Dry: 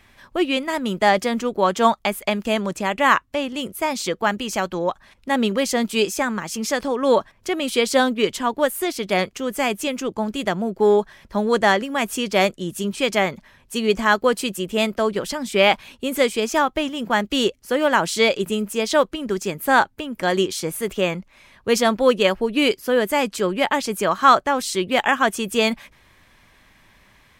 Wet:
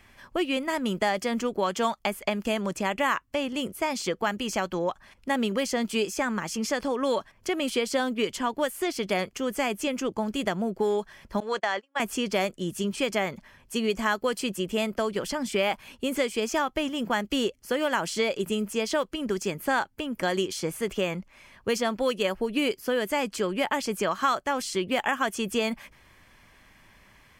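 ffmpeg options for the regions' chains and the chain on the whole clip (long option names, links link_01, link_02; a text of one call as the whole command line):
ffmpeg -i in.wav -filter_complex "[0:a]asettb=1/sr,asplit=3[link_01][link_02][link_03];[link_01]atrim=end=11.404[link_04];[link_02]atrim=start=11.4:end=12,asetpts=PTS-STARTPTS,afade=type=in:duration=0.004:curve=qsin,afade=type=out:start_time=0.596:duration=0.004:curve=qsin,agate=range=-34dB:threshold=-23dB:ratio=16:release=100:detection=peak,acrossover=split=510 7400:gain=0.178 1 0.141[link_05][link_06][link_07];[link_05][link_06][link_07]amix=inputs=3:normalize=0,acompressor=threshold=-18dB:ratio=4:attack=3.2:release=140:knee=1:detection=peak[link_08];[link_03]atrim=start=11.996[link_09];[link_04][link_08]acrossfade=duration=0.004:curve1=hsin:curve2=qsin[link_10];[link_10][link_09]acrossfade=duration=0.004:curve1=qsin:curve2=hsin,acrossover=split=2100|7700[link_11][link_12][link_13];[link_11]acompressor=threshold=-22dB:ratio=4[link_14];[link_12]acompressor=threshold=-31dB:ratio=4[link_15];[link_13]acompressor=threshold=-43dB:ratio=4[link_16];[link_14][link_15][link_16]amix=inputs=3:normalize=0,bandreject=frequency=3800:width=8.4,volume=-2dB" out.wav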